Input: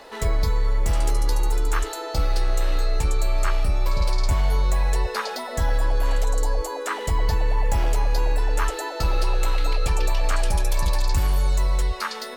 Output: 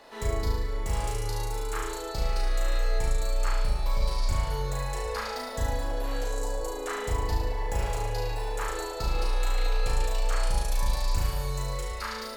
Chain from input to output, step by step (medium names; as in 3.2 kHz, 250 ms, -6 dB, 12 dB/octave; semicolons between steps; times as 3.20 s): flutter echo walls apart 6.2 m, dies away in 0.92 s; trim -8.5 dB